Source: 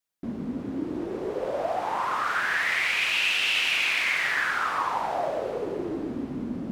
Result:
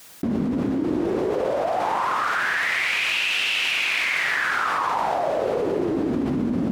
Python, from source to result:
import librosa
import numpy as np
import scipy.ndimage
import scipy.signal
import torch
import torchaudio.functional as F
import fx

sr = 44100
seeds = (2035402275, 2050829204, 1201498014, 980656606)

y = scipy.signal.sosfilt(scipy.signal.butter(2, 42.0, 'highpass', fs=sr, output='sos'), x)
y = fx.env_flatten(y, sr, amount_pct=100)